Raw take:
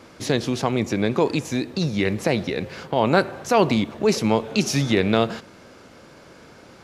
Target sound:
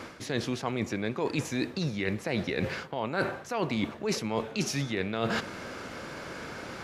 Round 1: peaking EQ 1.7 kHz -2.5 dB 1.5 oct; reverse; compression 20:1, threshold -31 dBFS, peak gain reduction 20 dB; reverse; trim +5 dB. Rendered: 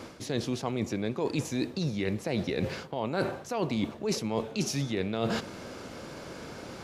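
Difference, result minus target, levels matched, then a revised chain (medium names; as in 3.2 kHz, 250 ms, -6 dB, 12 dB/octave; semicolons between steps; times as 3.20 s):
2 kHz band -5.5 dB
peaking EQ 1.7 kHz +5 dB 1.5 oct; reverse; compression 20:1, threshold -31 dBFS, peak gain reduction 22 dB; reverse; trim +5 dB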